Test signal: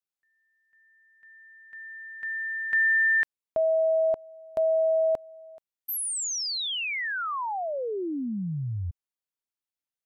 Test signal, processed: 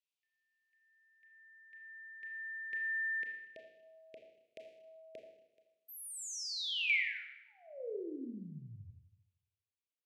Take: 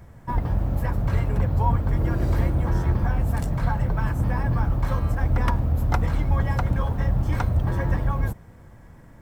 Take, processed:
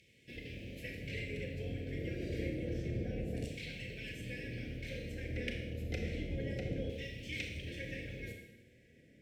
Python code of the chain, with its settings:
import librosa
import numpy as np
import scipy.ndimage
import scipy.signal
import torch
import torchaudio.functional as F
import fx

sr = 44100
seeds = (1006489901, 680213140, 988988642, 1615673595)

y = fx.filter_lfo_bandpass(x, sr, shape='saw_down', hz=0.29, low_hz=900.0, high_hz=2800.0, q=1.4)
y = scipy.signal.sosfilt(scipy.signal.ellip(3, 1.0, 80, [470.0, 2400.0], 'bandstop', fs=sr, output='sos'), y)
y = fx.rev_schroeder(y, sr, rt60_s=0.92, comb_ms=26, drr_db=2.0)
y = F.gain(torch.from_numpy(y), 5.0).numpy()